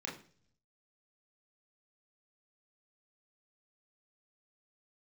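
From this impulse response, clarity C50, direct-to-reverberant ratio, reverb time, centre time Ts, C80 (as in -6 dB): 8.5 dB, -3.0 dB, 0.45 s, 28 ms, 13.0 dB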